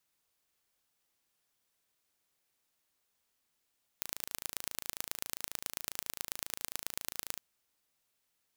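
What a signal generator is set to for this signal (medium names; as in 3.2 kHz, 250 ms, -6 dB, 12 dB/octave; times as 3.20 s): pulse train 27.4 per s, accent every 3, -7 dBFS 3.37 s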